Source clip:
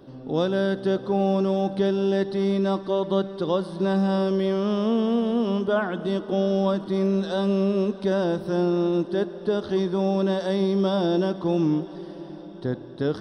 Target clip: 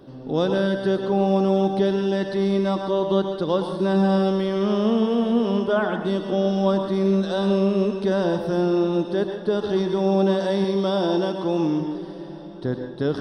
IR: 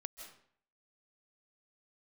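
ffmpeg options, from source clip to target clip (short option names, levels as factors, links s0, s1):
-filter_complex "[0:a]asettb=1/sr,asplit=3[s0][s1][s2];[s0]atrim=end=10.644[s3];[s1]atrim=start=10.64:end=11.81,asetpts=PTS-STARTPTS,afade=t=in:d=0.004:c=qsin,afade=t=out:st=1.166:d=0.004:c=qsin,bass=f=250:g=-6,treble=f=4000:g=1[s4];[s2]atrim=start=11.806[s5];[s3][s4]acrossfade=d=0.004:c1=hsin:c2=qsin[s6];[s6][s5]acrossfade=d=0.004:c1=qsin:c2=hsin[s7];[1:a]atrim=start_sample=2205,asetrate=61740,aresample=44100[s8];[s7][s8]afir=irnorm=-1:irlink=0,volume=2.82"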